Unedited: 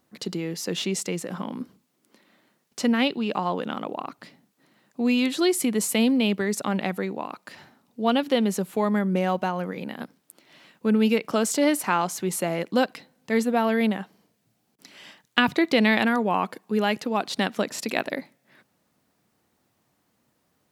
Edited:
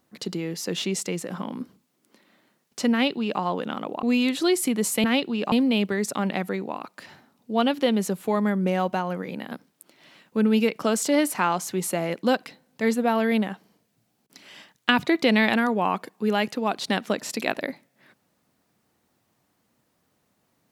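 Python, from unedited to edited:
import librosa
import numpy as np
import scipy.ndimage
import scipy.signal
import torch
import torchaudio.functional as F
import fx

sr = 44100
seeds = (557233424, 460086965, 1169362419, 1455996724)

y = fx.edit(x, sr, fx.duplicate(start_s=2.92, length_s=0.48, to_s=6.01),
    fx.cut(start_s=4.03, length_s=0.97), tone=tone)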